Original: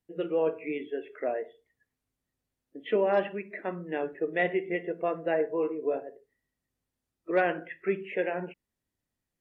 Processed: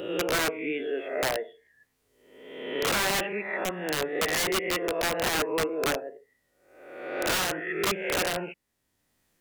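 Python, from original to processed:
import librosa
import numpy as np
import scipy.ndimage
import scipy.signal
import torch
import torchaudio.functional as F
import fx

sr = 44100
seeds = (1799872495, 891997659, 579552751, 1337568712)

y = fx.spec_swells(x, sr, rise_s=0.8)
y = fx.low_shelf(y, sr, hz=260.0, db=-7.0)
y = (np.mod(10.0 ** (23.0 / 20.0) * y + 1.0, 2.0) - 1.0) / 10.0 ** (23.0 / 20.0)
y = fx.wow_flutter(y, sr, seeds[0], rate_hz=2.1, depth_cents=27.0)
y = fx.band_squash(y, sr, depth_pct=40)
y = F.gain(torch.from_numpy(y), 2.5).numpy()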